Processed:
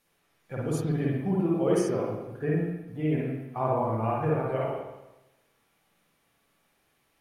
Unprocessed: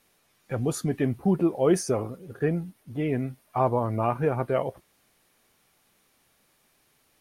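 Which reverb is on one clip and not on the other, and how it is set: spring tank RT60 1 s, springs 45/52/58 ms, chirp 75 ms, DRR -4 dB; trim -7.5 dB

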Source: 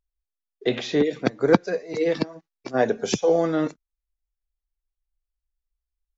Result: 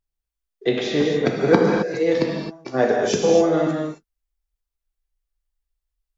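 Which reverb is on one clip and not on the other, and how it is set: gated-style reverb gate 290 ms flat, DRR -1 dB

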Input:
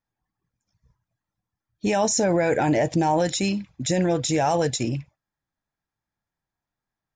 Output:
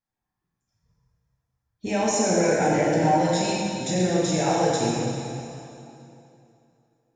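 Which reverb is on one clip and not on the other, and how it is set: plate-style reverb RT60 2.8 s, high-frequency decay 0.85×, DRR -6.5 dB; trim -7 dB

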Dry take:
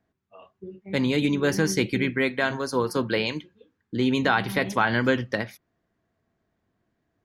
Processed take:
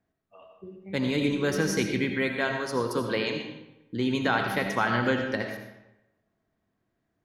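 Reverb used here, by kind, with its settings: algorithmic reverb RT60 0.94 s, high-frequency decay 0.75×, pre-delay 40 ms, DRR 4 dB; trim -4 dB

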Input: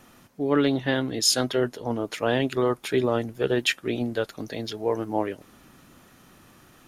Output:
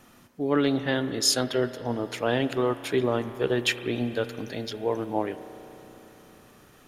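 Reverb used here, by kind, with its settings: spring tank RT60 3.8 s, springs 33 ms, chirp 55 ms, DRR 11.5 dB; trim -1.5 dB

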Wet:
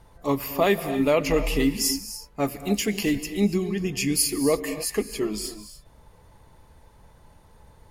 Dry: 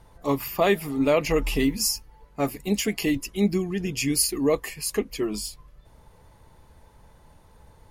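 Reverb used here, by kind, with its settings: gated-style reverb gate 310 ms rising, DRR 10.5 dB

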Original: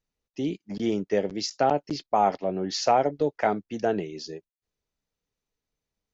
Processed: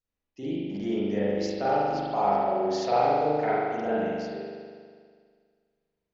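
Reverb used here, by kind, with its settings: spring tank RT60 1.9 s, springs 40 ms, chirp 35 ms, DRR -9.5 dB; trim -10.5 dB

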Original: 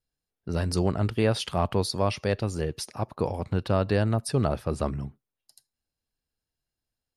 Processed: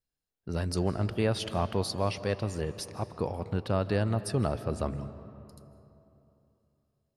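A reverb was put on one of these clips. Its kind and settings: algorithmic reverb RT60 3.1 s, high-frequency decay 0.5×, pre-delay 115 ms, DRR 13 dB; trim -4 dB

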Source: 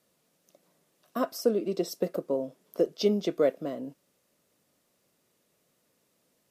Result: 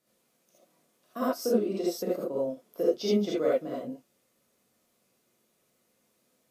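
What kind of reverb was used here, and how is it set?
gated-style reverb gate 100 ms rising, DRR -6.5 dB; trim -7 dB

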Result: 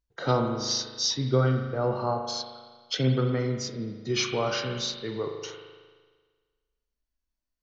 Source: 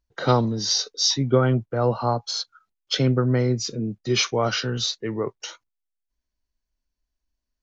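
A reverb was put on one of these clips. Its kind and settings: spring tank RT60 1.5 s, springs 38 ms, chirp 50 ms, DRR 3.5 dB; trim -6 dB

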